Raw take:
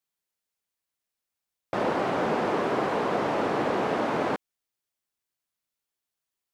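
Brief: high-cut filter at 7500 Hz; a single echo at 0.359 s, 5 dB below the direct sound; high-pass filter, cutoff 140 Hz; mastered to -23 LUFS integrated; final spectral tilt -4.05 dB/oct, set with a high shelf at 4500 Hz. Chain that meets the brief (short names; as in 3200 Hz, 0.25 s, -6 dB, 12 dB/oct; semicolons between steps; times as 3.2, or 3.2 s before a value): HPF 140 Hz; LPF 7500 Hz; high shelf 4500 Hz -6.5 dB; echo 0.359 s -5 dB; gain +3.5 dB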